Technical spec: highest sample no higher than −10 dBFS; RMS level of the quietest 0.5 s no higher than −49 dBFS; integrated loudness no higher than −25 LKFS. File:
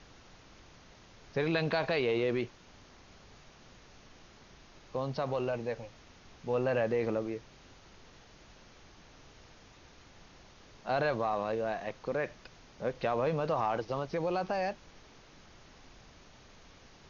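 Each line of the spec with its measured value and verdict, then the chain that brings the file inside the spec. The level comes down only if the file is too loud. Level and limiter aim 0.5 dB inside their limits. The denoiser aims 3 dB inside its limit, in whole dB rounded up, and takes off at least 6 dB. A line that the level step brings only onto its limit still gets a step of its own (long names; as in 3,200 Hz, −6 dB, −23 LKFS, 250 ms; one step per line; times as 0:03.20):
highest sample −18.0 dBFS: in spec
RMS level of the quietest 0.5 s −56 dBFS: in spec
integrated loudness −33.5 LKFS: in spec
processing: no processing needed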